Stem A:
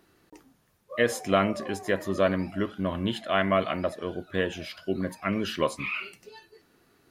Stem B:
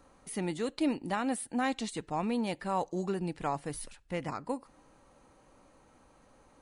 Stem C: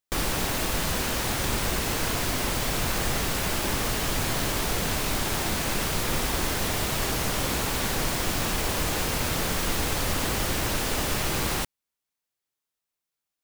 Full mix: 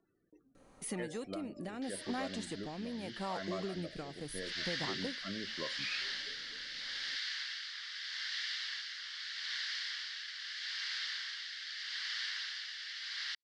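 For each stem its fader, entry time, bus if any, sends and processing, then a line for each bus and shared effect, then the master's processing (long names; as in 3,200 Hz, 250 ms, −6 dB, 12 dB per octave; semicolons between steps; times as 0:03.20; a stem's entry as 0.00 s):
−10.0 dB, 0.00 s, bus A, no send, spectral peaks only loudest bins 32
+1.0 dB, 0.55 s, bus A, no send, no processing
0:04.31 −12 dB → 0:04.56 −1.5 dB, 1.70 s, no bus, no send, elliptic band-pass filter 1,700–4,900 Hz, stop band 70 dB; parametric band 2,500 Hz −14.5 dB 0.28 octaves
bus A: 0.0 dB, soft clipping −18 dBFS, distortion −24 dB; downward compressor 6 to 1, threshold −35 dBFS, peak gain reduction 10.5 dB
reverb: not used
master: parametric band 67 Hz −14.5 dB 0.49 octaves; rotating-speaker cabinet horn 0.8 Hz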